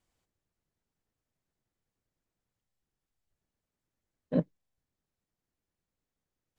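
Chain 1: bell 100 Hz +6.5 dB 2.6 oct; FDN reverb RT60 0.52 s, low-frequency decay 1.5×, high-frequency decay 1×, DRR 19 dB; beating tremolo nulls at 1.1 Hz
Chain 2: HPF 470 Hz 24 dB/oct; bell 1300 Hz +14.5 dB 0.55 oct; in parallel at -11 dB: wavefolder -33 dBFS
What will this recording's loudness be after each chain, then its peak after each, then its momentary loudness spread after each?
-31.5, -38.5 LUFS; -13.0, -19.5 dBFS; 6, 11 LU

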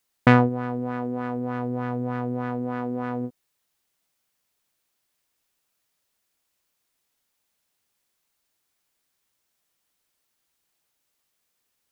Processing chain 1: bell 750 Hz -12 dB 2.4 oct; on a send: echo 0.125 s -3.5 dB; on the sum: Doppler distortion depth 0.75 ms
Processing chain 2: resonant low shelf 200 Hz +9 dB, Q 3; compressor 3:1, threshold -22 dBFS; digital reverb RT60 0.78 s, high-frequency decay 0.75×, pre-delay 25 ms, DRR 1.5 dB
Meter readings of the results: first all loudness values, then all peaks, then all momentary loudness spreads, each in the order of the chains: -29.5, -26.0 LUFS; -9.0, -8.0 dBFS; 10, 5 LU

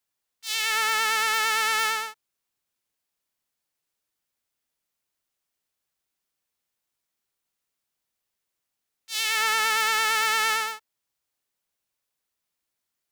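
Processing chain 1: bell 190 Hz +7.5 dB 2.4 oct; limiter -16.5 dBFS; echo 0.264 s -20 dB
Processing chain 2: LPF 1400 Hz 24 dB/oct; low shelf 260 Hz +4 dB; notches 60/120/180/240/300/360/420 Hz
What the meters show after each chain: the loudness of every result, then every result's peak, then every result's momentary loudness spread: -29.0, -29.5 LUFS; -16.0, -19.0 dBFS; 8, 13 LU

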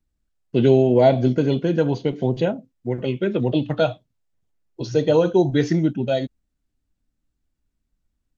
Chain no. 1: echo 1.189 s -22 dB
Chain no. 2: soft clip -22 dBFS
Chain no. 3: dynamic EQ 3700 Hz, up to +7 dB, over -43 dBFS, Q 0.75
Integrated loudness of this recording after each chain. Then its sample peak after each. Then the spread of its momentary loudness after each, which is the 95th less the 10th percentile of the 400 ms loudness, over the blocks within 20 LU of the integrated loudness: -20.5, -27.5, -20.0 LUFS; -4.5, -22.0, -3.5 dBFS; 11, 8, 10 LU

